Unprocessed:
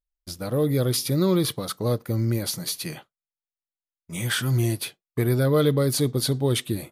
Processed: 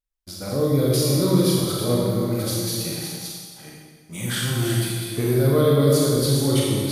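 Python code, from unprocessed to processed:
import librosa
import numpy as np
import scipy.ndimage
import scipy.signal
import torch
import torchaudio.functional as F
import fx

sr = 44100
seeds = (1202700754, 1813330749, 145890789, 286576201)

y = fx.reverse_delay(x, sr, ms=411, wet_db=-6)
y = fx.rev_schroeder(y, sr, rt60_s=1.5, comb_ms=29, drr_db=-4.0)
y = fx.dynamic_eq(y, sr, hz=1900.0, q=1.1, threshold_db=-35.0, ratio=4.0, max_db=-4)
y = y * 10.0 ** (-2.5 / 20.0)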